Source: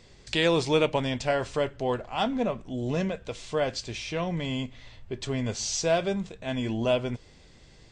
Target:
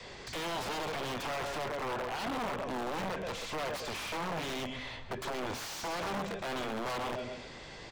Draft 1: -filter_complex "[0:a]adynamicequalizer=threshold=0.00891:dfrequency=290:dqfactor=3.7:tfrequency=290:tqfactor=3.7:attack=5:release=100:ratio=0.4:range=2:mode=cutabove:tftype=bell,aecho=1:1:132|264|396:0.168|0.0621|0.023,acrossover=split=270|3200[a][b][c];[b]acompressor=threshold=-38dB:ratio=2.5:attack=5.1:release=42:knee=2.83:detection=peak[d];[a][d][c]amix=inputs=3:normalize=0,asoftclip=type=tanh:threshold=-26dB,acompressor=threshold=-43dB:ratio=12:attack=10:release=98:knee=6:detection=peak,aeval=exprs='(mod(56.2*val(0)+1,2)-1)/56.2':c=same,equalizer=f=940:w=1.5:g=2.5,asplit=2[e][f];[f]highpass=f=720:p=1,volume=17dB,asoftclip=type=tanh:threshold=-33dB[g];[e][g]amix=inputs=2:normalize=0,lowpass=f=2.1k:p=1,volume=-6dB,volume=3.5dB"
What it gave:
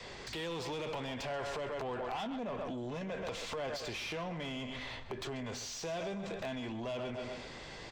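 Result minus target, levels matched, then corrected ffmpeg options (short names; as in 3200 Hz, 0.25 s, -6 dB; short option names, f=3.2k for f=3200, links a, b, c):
compressor: peak gain reduction +6 dB
-filter_complex "[0:a]adynamicequalizer=threshold=0.00891:dfrequency=290:dqfactor=3.7:tfrequency=290:tqfactor=3.7:attack=5:release=100:ratio=0.4:range=2:mode=cutabove:tftype=bell,aecho=1:1:132|264|396:0.168|0.0621|0.023,acrossover=split=270|3200[a][b][c];[b]acompressor=threshold=-38dB:ratio=2.5:attack=5.1:release=42:knee=2.83:detection=peak[d];[a][d][c]amix=inputs=3:normalize=0,asoftclip=type=tanh:threshold=-26dB,acompressor=threshold=-36.5dB:ratio=12:attack=10:release=98:knee=6:detection=peak,aeval=exprs='(mod(56.2*val(0)+1,2)-1)/56.2':c=same,equalizer=f=940:w=1.5:g=2.5,asplit=2[e][f];[f]highpass=f=720:p=1,volume=17dB,asoftclip=type=tanh:threshold=-33dB[g];[e][g]amix=inputs=2:normalize=0,lowpass=f=2.1k:p=1,volume=-6dB,volume=3.5dB"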